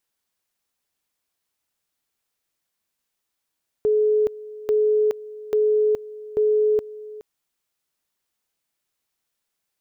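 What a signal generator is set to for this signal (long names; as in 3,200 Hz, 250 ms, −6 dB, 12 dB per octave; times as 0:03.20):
tone at two levels in turn 426 Hz −15.5 dBFS, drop 18.5 dB, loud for 0.42 s, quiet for 0.42 s, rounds 4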